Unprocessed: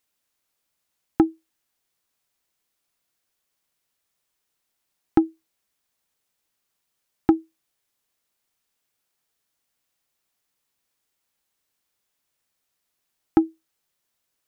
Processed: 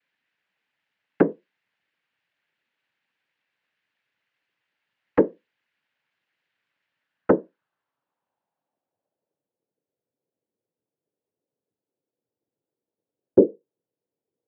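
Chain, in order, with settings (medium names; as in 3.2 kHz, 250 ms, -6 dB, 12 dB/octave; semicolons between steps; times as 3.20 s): noise-vocoded speech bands 8; low-pass sweep 2 kHz -> 450 Hz, 6.86–9.70 s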